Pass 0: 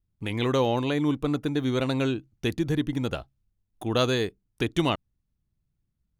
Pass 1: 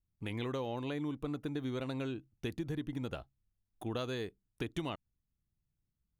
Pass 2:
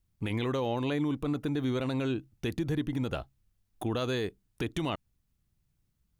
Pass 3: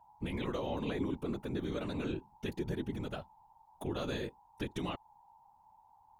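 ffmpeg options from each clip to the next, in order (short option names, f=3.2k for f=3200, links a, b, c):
-af "equalizer=f=5.8k:t=o:w=1.4:g=-3.5,acompressor=threshold=-26dB:ratio=6,volume=-7.5dB"
-af "alimiter=level_in=6.5dB:limit=-24dB:level=0:latency=1:release=25,volume=-6.5dB,volume=9dB"
-af "aeval=exprs='val(0)+0.002*sin(2*PI*880*n/s)':c=same,afftfilt=real='hypot(re,im)*cos(2*PI*random(0))':imag='hypot(re,im)*sin(2*PI*random(1))':win_size=512:overlap=0.75"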